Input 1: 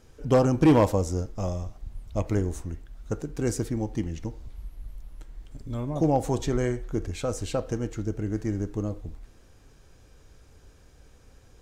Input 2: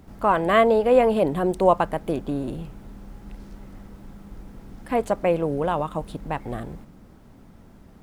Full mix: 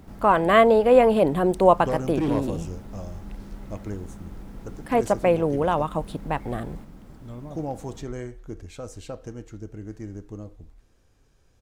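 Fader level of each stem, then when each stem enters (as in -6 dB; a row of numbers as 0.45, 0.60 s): -8.0, +1.5 dB; 1.55, 0.00 s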